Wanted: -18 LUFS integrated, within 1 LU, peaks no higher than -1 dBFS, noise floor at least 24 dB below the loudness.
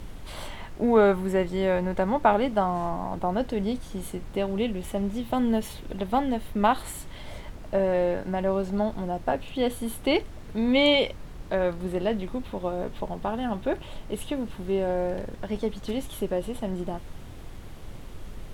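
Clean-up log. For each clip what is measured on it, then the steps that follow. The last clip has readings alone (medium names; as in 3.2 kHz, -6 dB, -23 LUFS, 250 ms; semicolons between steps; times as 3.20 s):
noise floor -41 dBFS; noise floor target -51 dBFS; loudness -27.0 LUFS; peak level -6.0 dBFS; loudness target -18.0 LUFS
-> noise print and reduce 10 dB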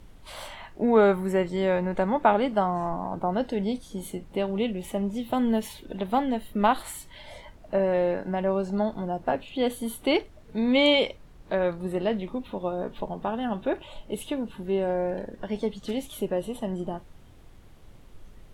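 noise floor -50 dBFS; noise floor target -51 dBFS
-> noise print and reduce 6 dB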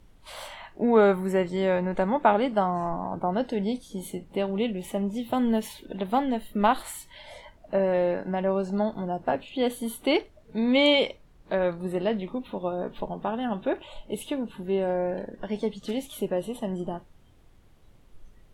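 noise floor -56 dBFS; loudness -27.0 LUFS; peak level -6.0 dBFS; loudness target -18.0 LUFS
-> trim +9 dB; peak limiter -1 dBFS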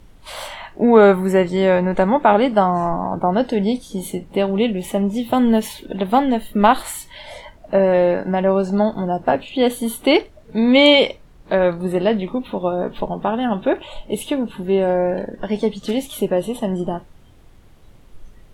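loudness -18.5 LUFS; peak level -1.0 dBFS; noise floor -47 dBFS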